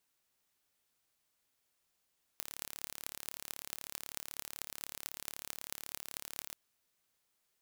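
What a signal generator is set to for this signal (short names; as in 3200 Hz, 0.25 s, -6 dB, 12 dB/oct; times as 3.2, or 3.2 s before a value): pulse train 36.1/s, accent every 8, -10.5 dBFS 4.14 s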